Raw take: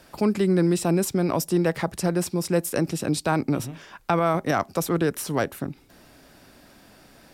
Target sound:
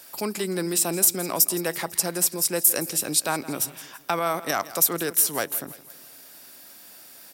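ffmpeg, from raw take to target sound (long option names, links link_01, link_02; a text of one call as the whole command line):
ffmpeg -i in.wav -af "aemphasis=mode=production:type=riaa,aecho=1:1:166|332|498|664:0.141|0.0678|0.0325|0.0156,volume=-2dB" out.wav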